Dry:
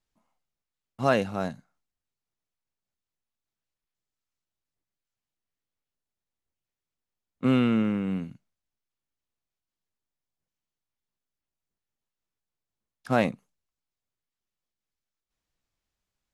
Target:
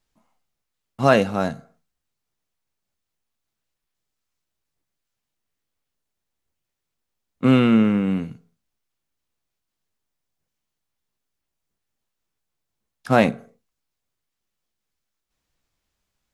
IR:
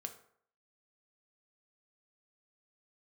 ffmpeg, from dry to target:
-filter_complex "[0:a]asplit=2[a][b];[1:a]atrim=start_sample=2205,afade=t=out:st=0.34:d=0.01,atrim=end_sample=15435,adelay=14[c];[b][c]afir=irnorm=-1:irlink=0,volume=-10dB[d];[a][d]amix=inputs=2:normalize=0,volume=7dB"

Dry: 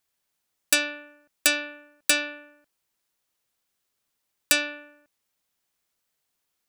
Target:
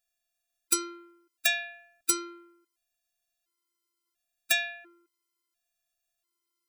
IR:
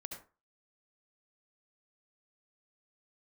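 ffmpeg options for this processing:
-af "afftfilt=real='hypot(re,im)*cos(PI*b)':imag='0':win_size=512:overlap=0.75,afftfilt=real='re*gt(sin(2*PI*0.72*pts/sr)*(1-2*mod(floor(b*sr/1024/270),2)),0)':imag='im*gt(sin(2*PI*0.72*pts/sr)*(1-2*mod(floor(b*sr/1024/270),2)),0)':win_size=1024:overlap=0.75,volume=2dB"

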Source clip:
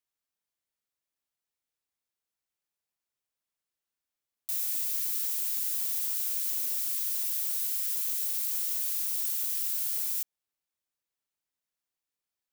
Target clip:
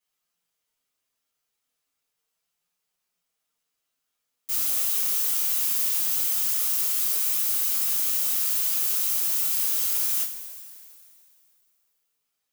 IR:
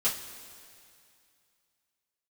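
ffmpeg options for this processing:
-filter_complex "[0:a]flanger=delay=5.4:depth=2.7:regen=49:speed=0.35:shape=sinusoidal,aeval=exprs='0.0891*(cos(1*acos(clip(val(0)/0.0891,-1,1)))-cos(1*PI/2))+0.0398*(cos(5*acos(clip(val(0)/0.0891,-1,1)))-cos(5*PI/2))':c=same[a];[1:a]atrim=start_sample=2205[b];[a][b]afir=irnorm=-1:irlink=0,volume=-5dB"

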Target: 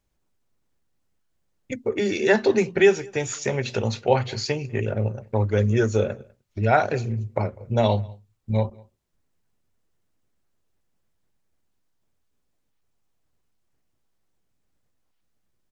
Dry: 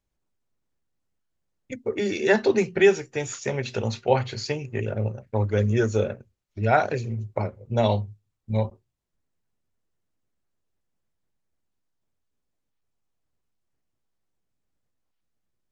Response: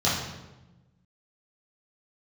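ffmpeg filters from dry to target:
-filter_complex "[0:a]asplit=2[a][b];[b]acompressor=threshold=-34dB:ratio=6,volume=-0.5dB[c];[a][c]amix=inputs=2:normalize=0,asplit=2[d][e];[e]adelay=198.3,volume=-26dB,highshelf=f=4k:g=-4.46[f];[d][f]amix=inputs=2:normalize=0"

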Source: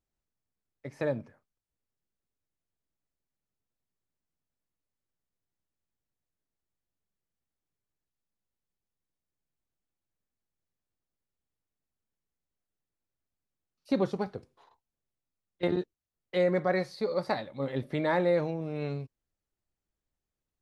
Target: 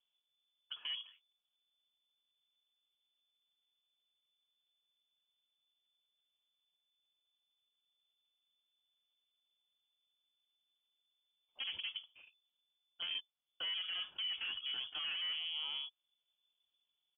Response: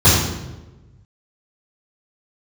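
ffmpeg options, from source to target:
-filter_complex "[0:a]equalizer=f=1.6k:t=o:w=0.63:g=-12,aresample=11025,asoftclip=type=tanh:threshold=-28dB,aresample=44100,atempo=1.2,acrossover=split=430[a][b];[a]acompressor=threshold=-49dB:ratio=6[c];[c][b]amix=inputs=2:normalize=0,lowpass=f=3k:t=q:w=0.5098,lowpass=f=3k:t=q:w=0.6013,lowpass=f=3k:t=q:w=0.9,lowpass=f=3k:t=q:w=2.563,afreqshift=-3500,alimiter=level_in=12.5dB:limit=-24dB:level=0:latency=1:release=40,volume=-12.5dB,volume=3.5dB"

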